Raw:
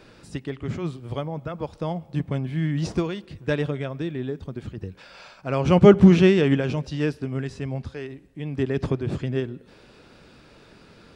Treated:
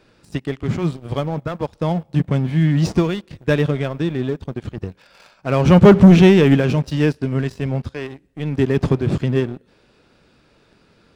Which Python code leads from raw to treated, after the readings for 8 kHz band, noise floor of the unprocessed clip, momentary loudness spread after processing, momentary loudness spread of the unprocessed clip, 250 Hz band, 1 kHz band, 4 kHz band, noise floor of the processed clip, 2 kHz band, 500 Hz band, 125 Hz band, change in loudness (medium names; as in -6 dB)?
no reading, -52 dBFS, 19 LU, 20 LU, +6.0 dB, +6.0 dB, +5.5 dB, -57 dBFS, +6.0 dB, +4.5 dB, +7.5 dB, +6.0 dB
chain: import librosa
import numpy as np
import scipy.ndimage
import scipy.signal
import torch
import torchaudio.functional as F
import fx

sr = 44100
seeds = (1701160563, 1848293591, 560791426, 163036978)

y = fx.dynamic_eq(x, sr, hz=180.0, q=1.5, threshold_db=-32.0, ratio=4.0, max_db=3)
y = fx.leveller(y, sr, passes=2)
y = y * 10.0 ** (-1.0 / 20.0)